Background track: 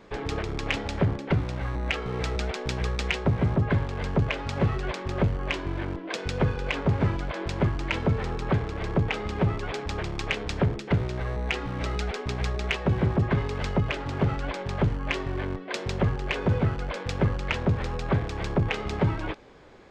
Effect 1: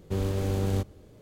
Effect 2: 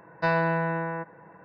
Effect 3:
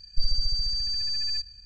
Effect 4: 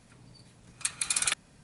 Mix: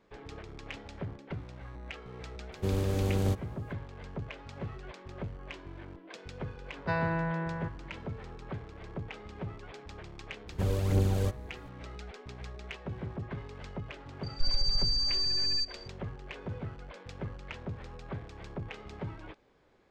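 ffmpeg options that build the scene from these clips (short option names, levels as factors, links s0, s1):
-filter_complex "[1:a]asplit=2[s0][s1];[0:a]volume=0.178[s2];[2:a]asubboost=boost=7:cutoff=240[s3];[s1]aphaser=in_gain=1:out_gain=1:delay=2.1:decay=0.5:speed=2:type=triangular[s4];[3:a]alimiter=level_in=5.96:limit=0.891:release=50:level=0:latency=1[s5];[s0]atrim=end=1.21,asetpts=PTS-STARTPTS,volume=0.841,afade=t=in:d=0.004:c=hsin,afade=t=out:st=1.206:d=0.004:c=hsin,adelay=2520[s6];[s3]atrim=end=1.44,asetpts=PTS-STARTPTS,volume=0.447,afade=t=in:d=0.004:c=hsin,afade=t=out:st=1.436:d=0.004:c=hsin,adelay=6650[s7];[s4]atrim=end=1.21,asetpts=PTS-STARTPTS,volume=0.708,afade=t=in:d=0.004:c=hsin,afade=t=out:st=1.206:d=0.004:c=hsin,adelay=10480[s8];[s5]atrim=end=1.65,asetpts=PTS-STARTPTS,volume=0.15,afade=t=in:d=0.004:c=hsin,afade=t=out:st=1.646:d=0.004:c=hsin,adelay=14230[s9];[s2][s6][s7][s8][s9]amix=inputs=5:normalize=0"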